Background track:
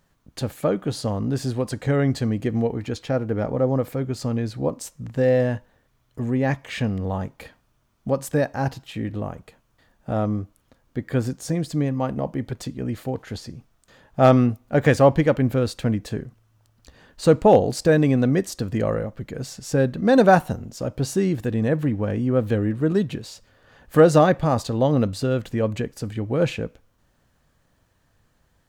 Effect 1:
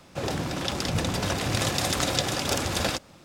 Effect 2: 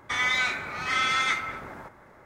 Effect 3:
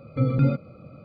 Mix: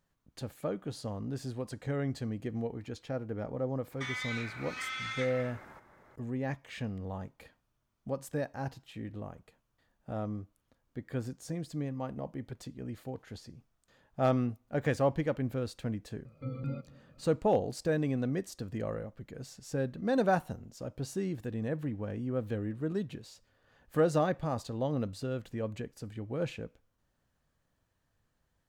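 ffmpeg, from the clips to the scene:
-filter_complex "[0:a]volume=-13dB[a];[2:a]acrossover=split=1500|4000[b][c][d];[b]acompressor=threshold=-43dB:ratio=4[e];[c]acompressor=threshold=-30dB:ratio=4[f];[d]acompressor=threshold=-46dB:ratio=4[g];[e][f][g]amix=inputs=3:normalize=0[h];[3:a]asplit=2[i][j];[j]adelay=239.1,volume=-22dB,highshelf=f=4k:g=-5.38[k];[i][k]amix=inputs=2:normalize=0[l];[h]atrim=end=2.25,asetpts=PTS-STARTPTS,volume=-7.5dB,afade=t=in:d=0.004:c=hsin,afade=t=out:st=2.246:d=0.004:c=hsin,adelay=3910[m];[l]atrim=end=1.04,asetpts=PTS-STARTPTS,volume=-16dB,afade=t=in:d=0.004:c=hsin,afade=t=out:st=1.036:d=0.004:c=hsin,adelay=16250[n];[a][m][n]amix=inputs=3:normalize=0"

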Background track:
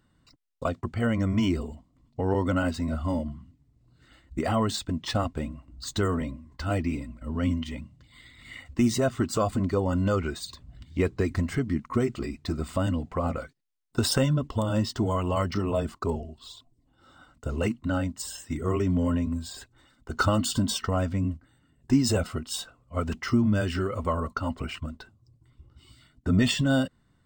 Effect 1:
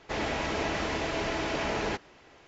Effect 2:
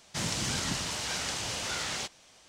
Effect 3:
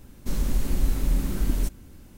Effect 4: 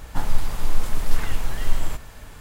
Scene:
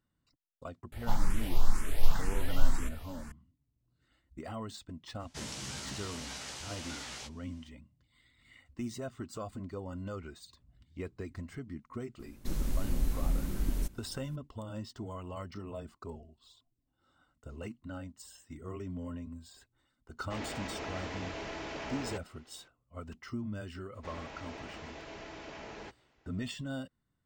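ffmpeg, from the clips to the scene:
-filter_complex "[1:a]asplit=2[a][b];[0:a]volume=-15.5dB[c];[4:a]asplit=2[d][e];[e]afreqshift=2[f];[d][f]amix=inputs=2:normalize=1[g];[2:a]asplit=2[h][i];[i]adelay=15,volume=-4dB[j];[h][j]amix=inputs=2:normalize=0[k];[a]asoftclip=type=tanh:threshold=-21.5dB[l];[g]atrim=end=2.4,asetpts=PTS-STARTPTS,volume=-3dB,afade=t=in:d=0.004:c=hsin,afade=t=out:st=2.396:d=0.004:c=hsin,adelay=920[m];[k]atrim=end=2.48,asetpts=PTS-STARTPTS,volume=-11dB,afade=t=in:d=0.004:c=hsin,afade=t=out:st=2.476:d=0.004:c=hsin,adelay=5200[n];[3:a]atrim=end=2.17,asetpts=PTS-STARTPTS,volume=-7.5dB,afade=t=in:d=0.004:c=hsin,afade=t=out:st=2.166:d=0.004:c=hsin,adelay=12190[o];[l]atrim=end=2.47,asetpts=PTS-STARTPTS,volume=-9dB,afade=t=in:d=0.004:c=hsin,afade=t=out:st=2.466:d=0.004:c=hsin,adelay=20210[p];[b]atrim=end=2.47,asetpts=PTS-STARTPTS,volume=-15.5dB,afade=t=in:d=0.004:c=hsin,afade=t=out:st=2.466:d=0.004:c=hsin,adelay=23940[q];[c][m][n][o][p][q]amix=inputs=6:normalize=0"

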